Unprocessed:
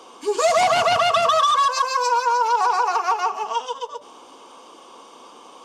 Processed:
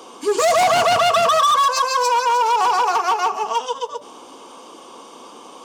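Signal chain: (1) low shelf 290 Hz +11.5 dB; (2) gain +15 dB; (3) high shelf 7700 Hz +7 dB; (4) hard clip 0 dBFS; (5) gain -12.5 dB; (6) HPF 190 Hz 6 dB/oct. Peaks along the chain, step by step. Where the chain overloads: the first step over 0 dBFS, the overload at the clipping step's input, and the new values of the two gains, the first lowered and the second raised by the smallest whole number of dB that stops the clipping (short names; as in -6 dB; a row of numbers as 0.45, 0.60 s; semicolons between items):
-7.5, +7.5, +8.0, 0.0, -12.5, -9.5 dBFS; step 2, 8.0 dB; step 2 +7 dB, step 5 -4.5 dB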